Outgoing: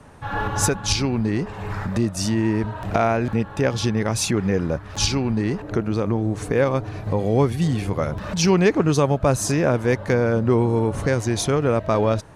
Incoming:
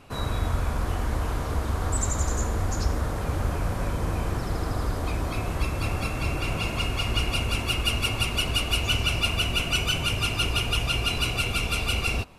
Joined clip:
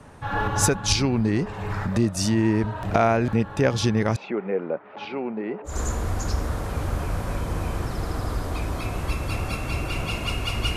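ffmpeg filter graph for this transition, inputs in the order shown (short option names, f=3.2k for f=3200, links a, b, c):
-filter_complex "[0:a]asettb=1/sr,asplit=3[a][b][c];[a]atrim=end=4.164[d];[b]atrim=start=4.16:end=5.8,asetpts=PTS-STARTPTS,afade=t=in:d=0.004:c=qsin,afade=t=out:st=1.636:d=0.004:c=qsin,highpass=f=260:w=0.5412,highpass=f=260:w=1.3066,equalizer=f=290:t=q:w=4:g=-9,equalizer=f=1.1k:t=q:w=4:g=-6,equalizer=f=1.7k:t=q:w=4:g=-9,lowpass=f=2.2k:w=0.5412,lowpass=f=2.2k:w=1.3066[e];[c]atrim=start=5.796[f];[d][e]acrossfade=d=0.004:c1=hsin:c2=qsin[g];[g][f]acrossfade=d=0.004:c1=qsin:c2=hsin,apad=whole_dur=10.76,atrim=end=10.76,atrim=end=5.8,asetpts=PTS-STARTPTS[h];[1:a]atrim=start=2.16:end=7.28,asetpts=PTS-STARTPTS[i];[h][i]acrossfade=d=0.16:c1=tri:c2=tri"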